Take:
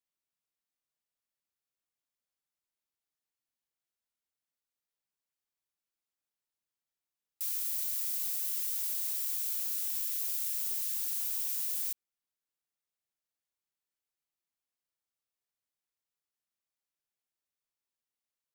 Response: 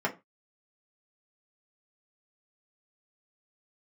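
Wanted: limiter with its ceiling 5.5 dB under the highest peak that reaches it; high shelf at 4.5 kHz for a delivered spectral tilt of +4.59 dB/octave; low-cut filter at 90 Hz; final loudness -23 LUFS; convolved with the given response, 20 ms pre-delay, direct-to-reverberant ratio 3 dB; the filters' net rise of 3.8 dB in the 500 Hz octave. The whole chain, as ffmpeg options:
-filter_complex "[0:a]highpass=90,equalizer=f=500:t=o:g=5,highshelf=f=4500:g=-5.5,alimiter=level_in=2.24:limit=0.0631:level=0:latency=1,volume=0.447,asplit=2[s0][s1];[1:a]atrim=start_sample=2205,adelay=20[s2];[s1][s2]afir=irnorm=-1:irlink=0,volume=0.237[s3];[s0][s3]amix=inputs=2:normalize=0,volume=5.62"

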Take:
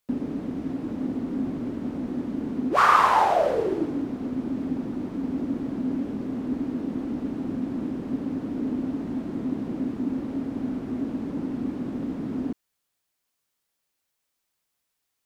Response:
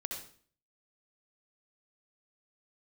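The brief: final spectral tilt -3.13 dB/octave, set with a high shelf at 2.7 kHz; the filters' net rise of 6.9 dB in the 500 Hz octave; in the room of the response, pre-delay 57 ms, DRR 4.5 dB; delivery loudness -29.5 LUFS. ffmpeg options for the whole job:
-filter_complex "[0:a]equalizer=f=500:t=o:g=9,highshelf=f=2700:g=-4,asplit=2[s0][s1];[1:a]atrim=start_sample=2205,adelay=57[s2];[s1][s2]afir=irnorm=-1:irlink=0,volume=0.562[s3];[s0][s3]amix=inputs=2:normalize=0,volume=0.501"

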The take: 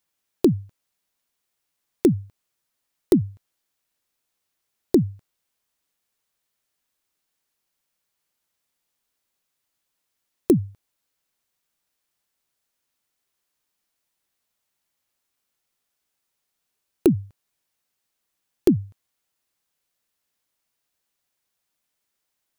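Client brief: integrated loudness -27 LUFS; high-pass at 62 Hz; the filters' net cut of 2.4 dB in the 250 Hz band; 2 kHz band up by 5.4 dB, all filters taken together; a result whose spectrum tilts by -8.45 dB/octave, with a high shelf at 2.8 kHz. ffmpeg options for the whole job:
-af "highpass=62,equalizer=f=250:t=o:g=-3.5,equalizer=f=2000:t=o:g=4,highshelf=f=2800:g=6.5,volume=0.794"

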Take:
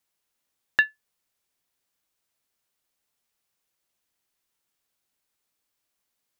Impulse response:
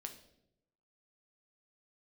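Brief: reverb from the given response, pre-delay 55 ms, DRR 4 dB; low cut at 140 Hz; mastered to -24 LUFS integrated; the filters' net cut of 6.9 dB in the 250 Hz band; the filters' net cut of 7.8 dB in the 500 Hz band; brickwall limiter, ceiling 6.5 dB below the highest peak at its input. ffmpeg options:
-filter_complex "[0:a]highpass=140,equalizer=f=250:t=o:g=-5.5,equalizer=f=500:t=o:g=-9,alimiter=limit=0.224:level=0:latency=1,asplit=2[s0][s1];[1:a]atrim=start_sample=2205,adelay=55[s2];[s1][s2]afir=irnorm=-1:irlink=0,volume=1[s3];[s0][s3]amix=inputs=2:normalize=0,volume=1.88"

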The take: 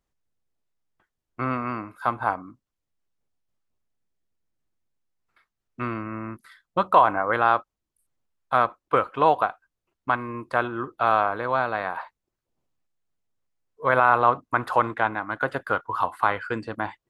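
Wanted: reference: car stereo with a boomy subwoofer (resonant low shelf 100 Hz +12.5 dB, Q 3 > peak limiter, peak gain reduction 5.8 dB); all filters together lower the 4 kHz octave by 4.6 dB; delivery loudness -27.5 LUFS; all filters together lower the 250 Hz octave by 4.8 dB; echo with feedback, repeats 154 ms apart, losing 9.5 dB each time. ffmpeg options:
-af "lowshelf=f=100:t=q:w=3:g=12.5,equalizer=f=250:t=o:g=-3.5,equalizer=f=4000:t=o:g=-6,aecho=1:1:154|308|462|616:0.335|0.111|0.0365|0.012,volume=0.891,alimiter=limit=0.266:level=0:latency=1"

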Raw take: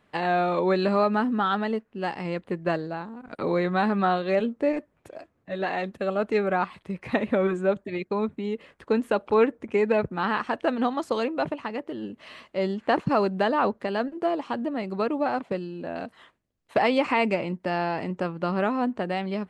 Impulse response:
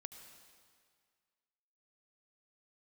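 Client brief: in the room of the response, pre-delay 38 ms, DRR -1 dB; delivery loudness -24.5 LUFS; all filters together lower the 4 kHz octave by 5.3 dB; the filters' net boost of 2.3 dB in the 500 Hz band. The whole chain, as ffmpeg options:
-filter_complex "[0:a]equalizer=f=500:t=o:g=3,equalizer=f=4000:t=o:g=-7.5,asplit=2[s0][s1];[1:a]atrim=start_sample=2205,adelay=38[s2];[s1][s2]afir=irnorm=-1:irlink=0,volume=2[s3];[s0][s3]amix=inputs=2:normalize=0,volume=0.708"

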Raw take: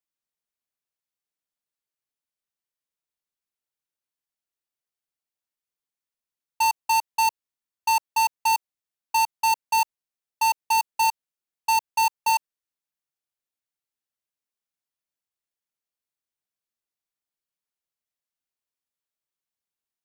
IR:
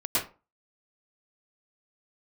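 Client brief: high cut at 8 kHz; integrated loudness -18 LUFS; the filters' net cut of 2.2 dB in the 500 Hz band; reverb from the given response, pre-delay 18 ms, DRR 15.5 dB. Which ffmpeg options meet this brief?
-filter_complex "[0:a]lowpass=8000,equalizer=f=500:t=o:g=-3,asplit=2[s0][s1];[1:a]atrim=start_sample=2205,adelay=18[s2];[s1][s2]afir=irnorm=-1:irlink=0,volume=0.0531[s3];[s0][s3]amix=inputs=2:normalize=0,volume=2.11"

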